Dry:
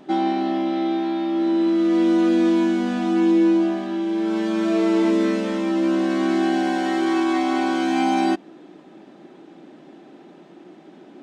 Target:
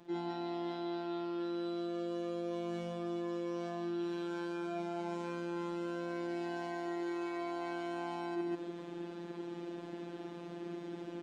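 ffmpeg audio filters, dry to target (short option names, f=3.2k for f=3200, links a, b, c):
-filter_complex "[0:a]acrossover=split=250|1500[a][b][c];[a]acompressor=threshold=-33dB:ratio=4[d];[b]acompressor=threshold=-20dB:ratio=4[e];[c]acompressor=threshold=-44dB:ratio=4[f];[d][e][f]amix=inputs=3:normalize=0,aecho=1:1:52.48|192.4:0.891|0.447,afftfilt=real='hypot(re,im)*cos(PI*b)':imag='0':win_size=1024:overlap=0.75,areverse,acompressor=threshold=-35dB:ratio=12,areverse,volume=1dB"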